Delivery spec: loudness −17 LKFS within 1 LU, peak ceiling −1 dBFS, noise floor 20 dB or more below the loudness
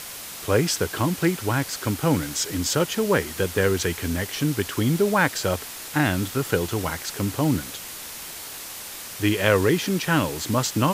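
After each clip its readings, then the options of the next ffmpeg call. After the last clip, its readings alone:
background noise floor −37 dBFS; target noise floor −44 dBFS; integrated loudness −24.0 LKFS; sample peak −2.5 dBFS; target loudness −17.0 LKFS
→ -af "afftdn=noise_reduction=7:noise_floor=-37"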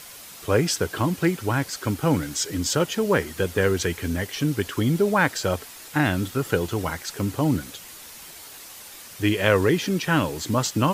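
background noise floor −43 dBFS; target noise floor −44 dBFS
→ -af "afftdn=noise_reduction=6:noise_floor=-43"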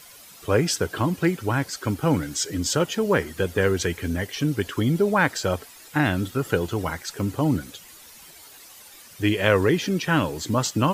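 background noise floor −47 dBFS; integrated loudness −24.0 LKFS; sample peak −3.0 dBFS; target loudness −17.0 LKFS
→ -af "volume=7dB,alimiter=limit=-1dB:level=0:latency=1"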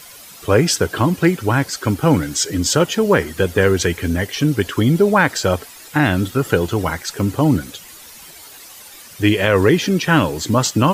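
integrated loudness −17.5 LKFS; sample peak −1.0 dBFS; background noise floor −40 dBFS

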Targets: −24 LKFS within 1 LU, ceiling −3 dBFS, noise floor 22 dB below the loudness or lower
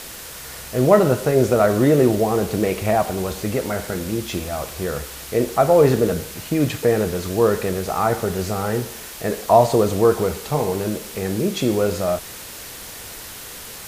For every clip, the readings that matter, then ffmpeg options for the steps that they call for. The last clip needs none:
background noise floor −36 dBFS; target noise floor −42 dBFS; integrated loudness −20.0 LKFS; sample peak −1.5 dBFS; target loudness −24.0 LKFS
→ -af "afftdn=noise_reduction=6:noise_floor=-36"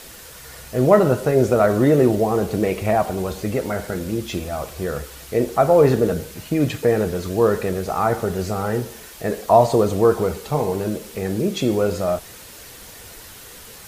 background noise floor −41 dBFS; target noise floor −42 dBFS
→ -af "afftdn=noise_reduction=6:noise_floor=-41"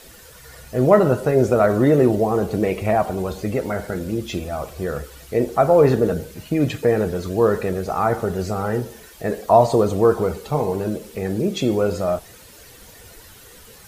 background noise floor −45 dBFS; integrated loudness −20.0 LKFS; sample peak −1.5 dBFS; target loudness −24.0 LKFS
→ -af "volume=-4dB"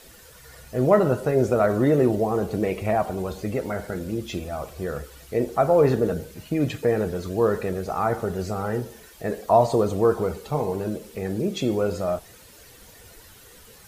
integrated loudness −24.0 LKFS; sample peak −5.5 dBFS; background noise floor −49 dBFS

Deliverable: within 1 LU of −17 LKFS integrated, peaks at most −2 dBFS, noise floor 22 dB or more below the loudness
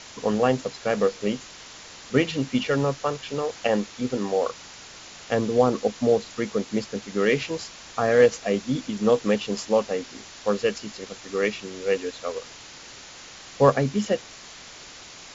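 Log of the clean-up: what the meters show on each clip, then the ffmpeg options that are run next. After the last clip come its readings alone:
background noise floor −44 dBFS; target noise floor −47 dBFS; integrated loudness −25.0 LKFS; sample peak −5.0 dBFS; target loudness −17.0 LKFS
→ -af "afftdn=noise_reduction=6:noise_floor=-44"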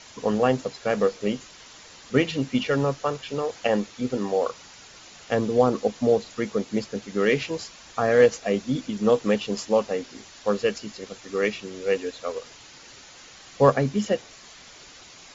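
background noise floor −48 dBFS; integrated loudness −25.0 LKFS; sample peak −5.0 dBFS; target loudness −17.0 LKFS
→ -af "volume=8dB,alimiter=limit=-2dB:level=0:latency=1"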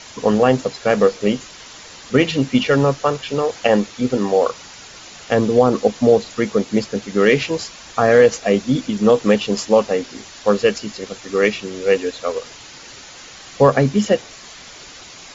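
integrated loudness −17.5 LKFS; sample peak −2.0 dBFS; background noise floor −40 dBFS

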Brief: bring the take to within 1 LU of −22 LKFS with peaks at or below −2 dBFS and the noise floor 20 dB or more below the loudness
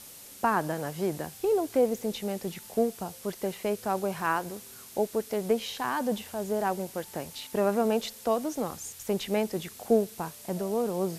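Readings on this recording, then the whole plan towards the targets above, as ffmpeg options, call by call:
background noise floor −48 dBFS; target noise floor −50 dBFS; integrated loudness −30.0 LKFS; sample peak −11.5 dBFS; target loudness −22.0 LKFS
→ -af "afftdn=noise_reduction=6:noise_floor=-48"
-af "volume=8dB"

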